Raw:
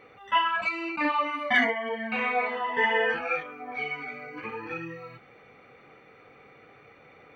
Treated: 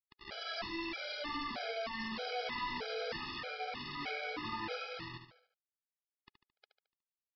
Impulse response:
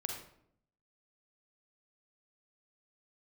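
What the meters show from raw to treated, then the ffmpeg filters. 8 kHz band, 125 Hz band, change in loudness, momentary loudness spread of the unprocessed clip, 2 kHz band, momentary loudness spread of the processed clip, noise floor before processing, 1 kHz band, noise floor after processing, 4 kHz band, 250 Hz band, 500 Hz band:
can't be measured, −4.0 dB, −12.5 dB, 14 LU, −14.5 dB, 5 LU, −55 dBFS, −13.0 dB, below −85 dBFS, −5.0 dB, −10.0 dB, −10.5 dB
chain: -filter_complex "[0:a]lowpass=4300,adynamicequalizer=threshold=0.00562:dfrequency=830:dqfactor=4.7:tfrequency=830:tqfactor=4.7:attack=5:release=100:ratio=0.375:range=2:mode=cutabove:tftype=bell,acrossover=split=830|2000[link_01][link_02][link_03];[link_01]acompressor=threshold=-44dB:ratio=4[link_04];[link_02]acompressor=threshold=-38dB:ratio=4[link_05];[link_03]acompressor=threshold=-40dB:ratio=4[link_06];[link_04][link_05][link_06]amix=inputs=3:normalize=0,acrossover=split=960[link_07][link_08];[link_08]aeval=exprs='(mod(63.1*val(0)+1,2)-1)/63.1':channel_layout=same[link_09];[link_07][link_09]amix=inputs=2:normalize=0,acrusher=bits=6:mix=0:aa=0.000001,aresample=11025,asoftclip=type=tanh:threshold=-40dB,aresample=44100,aecho=1:1:73|146|219|292|365:0.398|0.179|0.0806|0.0363|0.0163,afftfilt=real='re*gt(sin(2*PI*1.6*pts/sr)*(1-2*mod(floor(b*sr/1024/420),2)),0)':imag='im*gt(sin(2*PI*1.6*pts/sr)*(1-2*mod(floor(b*sr/1024/420),2)),0)':win_size=1024:overlap=0.75,volume=6.5dB"

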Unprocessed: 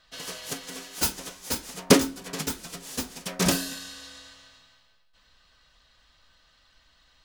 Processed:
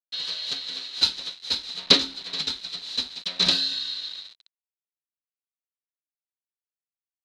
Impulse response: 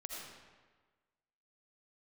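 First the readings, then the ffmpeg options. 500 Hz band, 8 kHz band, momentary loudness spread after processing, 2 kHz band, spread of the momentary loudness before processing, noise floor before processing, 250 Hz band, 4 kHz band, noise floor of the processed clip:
−8.5 dB, −8.5 dB, 13 LU, −0.5 dB, 18 LU, −63 dBFS, −9.5 dB, +11.0 dB, below −85 dBFS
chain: -af "acrusher=bits=6:mix=0:aa=0.000001,lowpass=frequency=4000:width_type=q:width=13,tiltshelf=frequency=970:gain=-4,volume=-6dB"

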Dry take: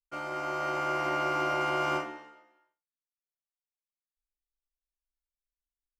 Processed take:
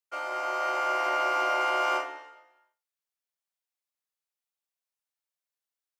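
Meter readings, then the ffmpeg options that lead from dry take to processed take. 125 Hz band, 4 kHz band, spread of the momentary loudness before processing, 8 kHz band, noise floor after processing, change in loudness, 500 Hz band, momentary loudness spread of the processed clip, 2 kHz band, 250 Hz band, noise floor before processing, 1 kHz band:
below −35 dB, +3.5 dB, 8 LU, +3.5 dB, below −85 dBFS, +3.0 dB, +1.5 dB, 8 LU, +3.5 dB, −7.0 dB, below −85 dBFS, +3.5 dB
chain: -af "highpass=frequency=460:width=0.5412,highpass=frequency=460:width=1.3066,volume=3.5dB"

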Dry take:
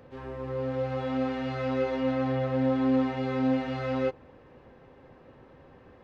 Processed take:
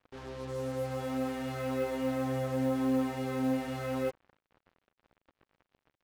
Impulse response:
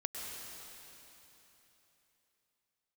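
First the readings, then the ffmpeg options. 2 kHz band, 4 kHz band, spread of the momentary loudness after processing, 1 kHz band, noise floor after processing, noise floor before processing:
−4.5 dB, −3.0 dB, 7 LU, −4.5 dB, below −85 dBFS, −55 dBFS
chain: -af "acrusher=bits=6:mix=0:aa=0.5,volume=-4.5dB"

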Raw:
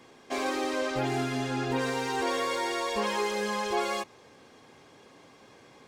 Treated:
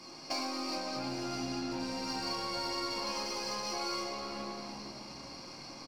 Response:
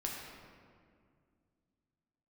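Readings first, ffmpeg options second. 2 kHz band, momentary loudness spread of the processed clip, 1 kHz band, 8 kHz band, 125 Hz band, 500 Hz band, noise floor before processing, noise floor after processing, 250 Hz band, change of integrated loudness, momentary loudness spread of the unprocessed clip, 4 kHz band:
−10.0 dB, 10 LU, −7.0 dB, −2.0 dB, −10.0 dB, −10.0 dB, −56 dBFS, −48 dBFS, −5.0 dB, −7.0 dB, 4 LU, +0.5 dB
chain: -filter_complex "[0:a]highpass=120[link_01];[1:a]atrim=start_sample=2205,asetrate=52920,aresample=44100[link_02];[link_01][link_02]afir=irnorm=-1:irlink=0,acompressor=threshold=-39dB:ratio=20,superequalizer=7b=0.282:11b=0.447:13b=0.316:14b=3.16,aeval=exprs='0.0266*(cos(1*acos(clip(val(0)/0.0266,-1,1)))-cos(1*PI/2))+0.00266*(cos(3*acos(clip(val(0)/0.0266,-1,1)))-cos(3*PI/2))+0.00106*(cos(6*acos(clip(val(0)/0.0266,-1,1)))-cos(6*PI/2))+0.0015*(cos(8*acos(clip(val(0)/0.0266,-1,1)))-cos(8*PI/2))':channel_layout=same,asoftclip=type=tanh:threshold=-35dB,equalizer=frequency=4100:width_type=o:width=0.58:gain=8,asplit=6[link_03][link_04][link_05][link_06][link_07][link_08];[link_04]adelay=379,afreqshift=-72,volume=-12.5dB[link_09];[link_05]adelay=758,afreqshift=-144,volume=-18dB[link_10];[link_06]adelay=1137,afreqshift=-216,volume=-23.5dB[link_11];[link_07]adelay=1516,afreqshift=-288,volume=-29dB[link_12];[link_08]adelay=1895,afreqshift=-360,volume=-34.6dB[link_13];[link_03][link_09][link_10][link_11][link_12][link_13]amix=inputs=6:normalize=0,volume=8dB"

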